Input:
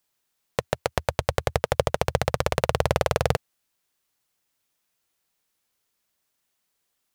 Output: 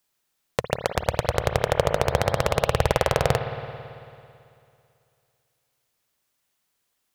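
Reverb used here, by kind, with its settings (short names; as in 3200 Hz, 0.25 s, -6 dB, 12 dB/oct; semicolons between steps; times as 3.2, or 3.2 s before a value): spring tank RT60 2.5 s, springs 55 ms, chirp 30 ms, DRR 6 dB; gain +1 dB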